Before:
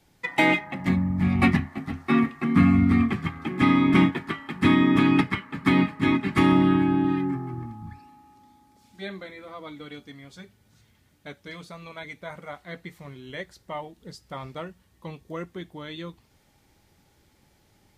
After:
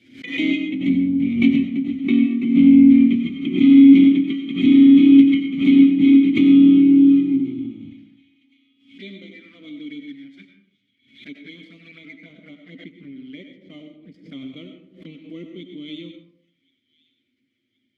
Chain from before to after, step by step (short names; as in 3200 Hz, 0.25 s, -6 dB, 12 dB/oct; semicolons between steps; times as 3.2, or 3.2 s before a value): 11.98–14.19 high shelf 2100 Hz -9.5 dB; sample leveller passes 2; envelope flanger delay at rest 9 ms, full sweep at -29.5 dBFS; vowel filter i; thin delay 1.076 s, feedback 48%, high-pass 2700 Hz, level -22 dB; reverb RT60 0.65 s, pre-delay 55 ms, DRR 5.5 dB; backwards sustainer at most 110 dB/s; gain +6.5 dB